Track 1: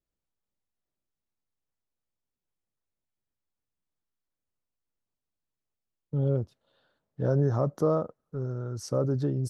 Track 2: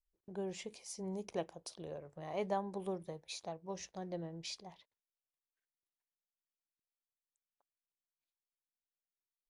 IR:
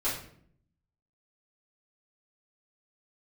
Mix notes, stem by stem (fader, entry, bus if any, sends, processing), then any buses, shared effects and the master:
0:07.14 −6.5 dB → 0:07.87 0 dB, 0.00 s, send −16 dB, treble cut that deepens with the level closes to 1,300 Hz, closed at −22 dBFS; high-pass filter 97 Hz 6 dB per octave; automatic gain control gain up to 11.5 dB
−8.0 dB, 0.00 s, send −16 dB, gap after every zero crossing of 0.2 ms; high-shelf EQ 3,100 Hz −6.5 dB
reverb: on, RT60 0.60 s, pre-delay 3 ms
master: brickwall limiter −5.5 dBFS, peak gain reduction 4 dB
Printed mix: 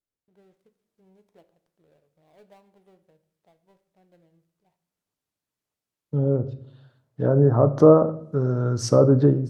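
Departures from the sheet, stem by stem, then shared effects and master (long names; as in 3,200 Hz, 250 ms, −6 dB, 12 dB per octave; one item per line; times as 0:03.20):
stem 2 −8.0 dB → −18.0 dB
master: missing brickwall limiter −5.5 dBFS, peak gain reduction 4 dB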